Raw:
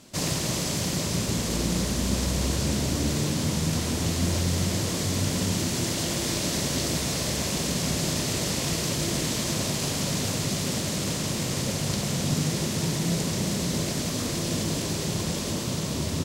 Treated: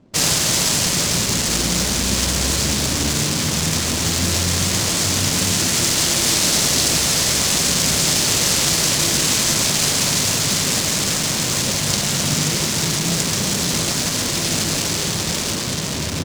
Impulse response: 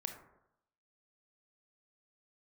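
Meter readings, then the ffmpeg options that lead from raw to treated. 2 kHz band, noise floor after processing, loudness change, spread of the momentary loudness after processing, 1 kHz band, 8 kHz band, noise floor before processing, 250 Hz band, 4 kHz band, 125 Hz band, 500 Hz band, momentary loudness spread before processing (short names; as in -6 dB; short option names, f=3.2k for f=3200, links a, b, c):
+11.0 dB, -23 dBFS, +10.0 dB, 4 LU, +8.5 dB, +12.5 dB, -30 dBFS, +3.5 dB, +12.0 dB, +3.0 dB, +4.5 dB, 2 LU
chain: -af "crystalizer=i=5:c=0,adynamicsmooth=sensitivity=3.5:basefreq=560,volume=3dB"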